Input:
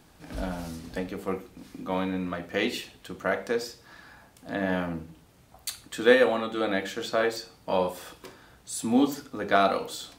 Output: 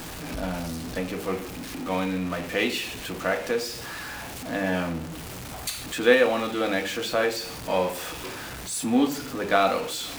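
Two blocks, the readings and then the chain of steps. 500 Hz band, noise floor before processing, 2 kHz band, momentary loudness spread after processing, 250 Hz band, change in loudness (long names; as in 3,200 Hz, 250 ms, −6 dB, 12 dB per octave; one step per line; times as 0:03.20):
+1.5 dB, −57 dBFS, +3.0 dB, 13 LU, +1.5 dB, +1.0 dB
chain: converter with a step at zero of −32 dBFS
mains-hum notches 50/100/150/200 Hz
dynamic equaliser 2,500 Hz, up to +5 dB, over −48 dBFS, Q 3.4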